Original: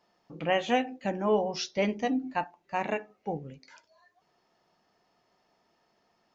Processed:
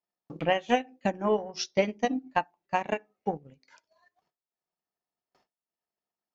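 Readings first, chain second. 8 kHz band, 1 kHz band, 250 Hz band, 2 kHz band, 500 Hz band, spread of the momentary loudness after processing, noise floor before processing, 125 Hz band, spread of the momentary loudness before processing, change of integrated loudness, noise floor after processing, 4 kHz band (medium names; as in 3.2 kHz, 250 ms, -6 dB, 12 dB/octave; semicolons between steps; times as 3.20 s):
no reading, +1.5 dB, -1.0 dB, +1.0 dB, +0.5 dB, 8 LU, -73 dBFS, 0.0 dB, 10 LU, +0.5 dB, under -85 dBFS, 0.0 dB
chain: gate with hold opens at -58 dBFS; dynamic bell 5.7 kHz, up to +4 dB, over -57 dBFS, Q 3.2; transient shaper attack +10 dB, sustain -9 dB; trim -4 dB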